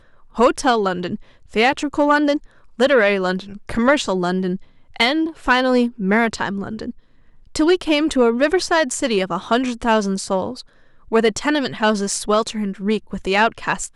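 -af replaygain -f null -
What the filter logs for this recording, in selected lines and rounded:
track_gain = -1.8 dB
track_peak = 0.395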